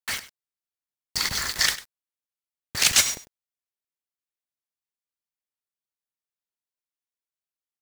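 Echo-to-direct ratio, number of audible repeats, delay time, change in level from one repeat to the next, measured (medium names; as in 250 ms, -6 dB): -16.0 dB, 1, 99 ms, no regular repeats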